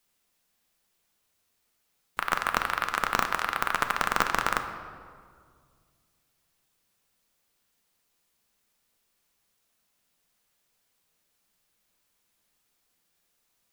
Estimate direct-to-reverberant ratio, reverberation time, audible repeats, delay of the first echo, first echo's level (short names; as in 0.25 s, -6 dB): 6.0 dB, 2.0 s, none, none, none